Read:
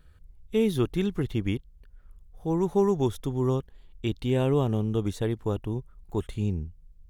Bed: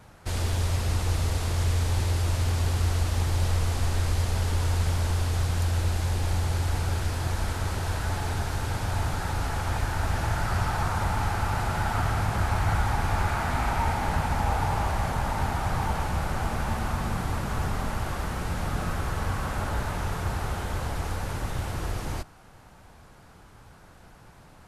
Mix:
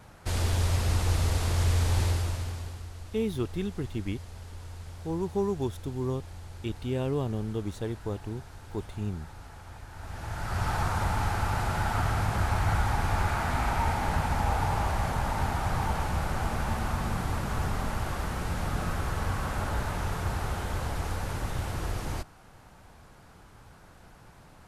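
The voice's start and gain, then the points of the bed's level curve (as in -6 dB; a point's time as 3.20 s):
2.60 s, -5.5 dB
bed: 2.06 s 0 dB
2.89 s -17.5 dB
9.87 s -17.5 dB
10.70 s -1.5 dB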